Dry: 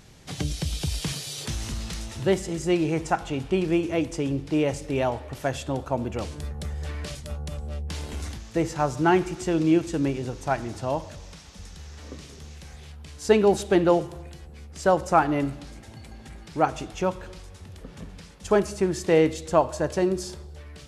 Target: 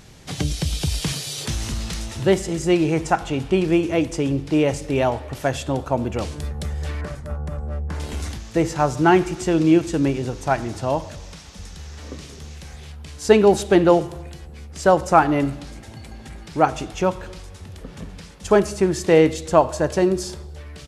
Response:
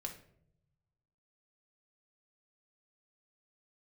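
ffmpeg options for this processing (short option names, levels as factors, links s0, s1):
-filter_complex "[0:a]asettb=1/sr,asplit=3[s0][s1][s2];[s0]atrim=end=7.014[s3];[s1]atrim=start=7.01:end=8,asetpts=PTS-STARTPTS,afade=t=in:d=0.004:c=qsin,afade=t=out:st=0.986:d=0.004:c=qsin,highshelf=f=2200:t=q:w=1.5:g=-12[s4];[s2]atrim=start=7.996[s5];[s3][s4]acrossfade=d=0.004:c1=hsin:c2=qsin[s6];[s6][s5]acrossfade=d=0.004:c1=qsin:c2=hsin,asplit=2[s7][s8];[s8]adelay=93.29,volume=0.0398,highshelf=f=4000:g=-2.1[s9];[s7][s9]amix=inputs=2:normalize=0,volume=1.78"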